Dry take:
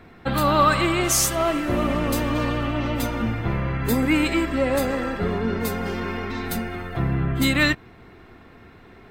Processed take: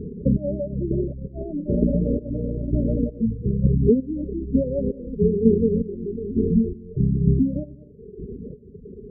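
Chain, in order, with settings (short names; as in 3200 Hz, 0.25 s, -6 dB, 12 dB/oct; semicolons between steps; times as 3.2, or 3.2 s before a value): chopper 1.1 Hz, depth 65%, duty 40%; on a send: echo 0.194 s -22.5 dB; on the sum: compressor 16:1, threshold -25 dBFS, peak gain reduction 11.5 dB; rippled Chebyshev low-pass 590 Hz, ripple 6 dB; reverb removal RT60 1.2 s; comb 4.6 ms, depth 53%; in parallel at +0.5 dB: upward compressor, threshold -39 dBFS; on the sum: low shelf 74 Hz +8 dB; spectral gate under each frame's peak -20 dB strong; HPF 48 Hz; gain +8.5 dB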